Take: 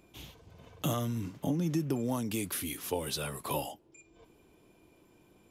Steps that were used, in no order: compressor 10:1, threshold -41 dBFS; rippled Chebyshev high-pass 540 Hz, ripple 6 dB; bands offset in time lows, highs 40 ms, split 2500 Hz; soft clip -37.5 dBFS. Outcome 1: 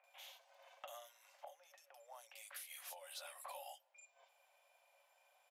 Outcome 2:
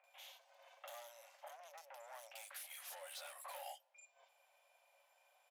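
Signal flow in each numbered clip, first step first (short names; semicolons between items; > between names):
bands offset in time > compressor > rippled Chebyshev high-pass > soft clip; soft clip > bands offset in time > compressor > rippled Chebyshev high-pass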